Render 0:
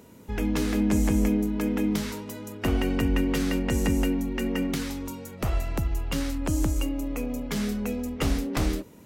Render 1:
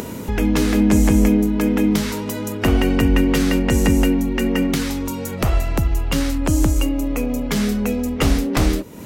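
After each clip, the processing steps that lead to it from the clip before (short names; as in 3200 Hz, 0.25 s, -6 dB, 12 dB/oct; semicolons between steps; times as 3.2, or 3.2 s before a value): upward compressor, threshold -27 dBFS; gain +8.5 dB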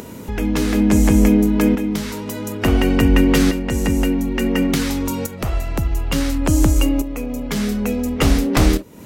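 tremolo saw up 0.57 Hz, depth 65%; gain +3.5 dB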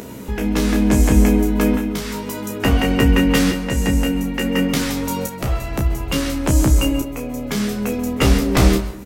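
on a send: early reflections 15 ms -5 dB, 31 ms -6.5 dB; on the sum: plate-style reverb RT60 0.66 s, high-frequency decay 0.5×, pre-delay 0.12 s, DRR 12.5 dB; gain -1 dB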